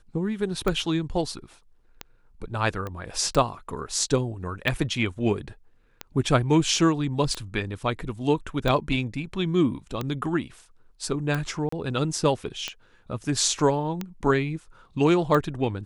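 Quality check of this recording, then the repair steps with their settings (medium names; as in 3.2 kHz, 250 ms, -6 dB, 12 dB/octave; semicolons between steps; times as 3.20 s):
tick 45 rpm -14 dBFS
2.87 s: pop -20 dBFS
11.69–11.72 s: dropout 34 ms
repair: de-click; interpolate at 11.69 s, 34 ms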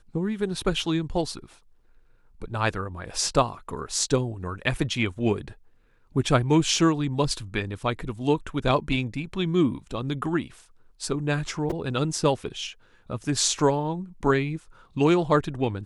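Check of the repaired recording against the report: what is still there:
nothing left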